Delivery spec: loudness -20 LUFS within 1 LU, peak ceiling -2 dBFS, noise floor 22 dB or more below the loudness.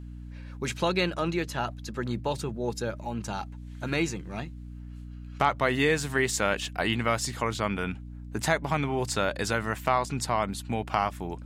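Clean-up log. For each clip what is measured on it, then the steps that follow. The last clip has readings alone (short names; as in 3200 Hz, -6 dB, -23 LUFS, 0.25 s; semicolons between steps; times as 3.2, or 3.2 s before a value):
hum 60 Hz; harmonics up to 300 Hz; hum level -38 dBFS; loudness -29.0 LUFS; peak -9.0 dBFS; loudness target -20.0 LUFS
-> de-hum 60 Hz, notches 5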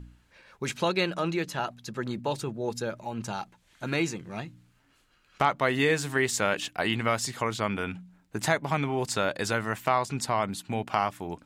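hum none; loudness -29.0 LUFS; peak -9.0 dBFS; loudness target -20.0 LUFS
-> gain +9 dB; limiter -2 dBFS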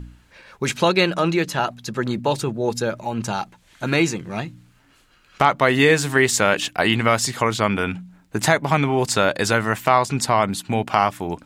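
loudness -20.0 LUFS; peak -2.0 dBFS; noise floor -57 dBFS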